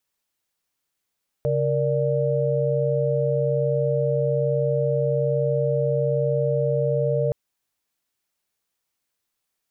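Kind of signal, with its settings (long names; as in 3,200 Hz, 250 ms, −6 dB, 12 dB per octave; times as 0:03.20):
held notes C#3/A#4/D5 sine, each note −23.5 dBFS 5.87 s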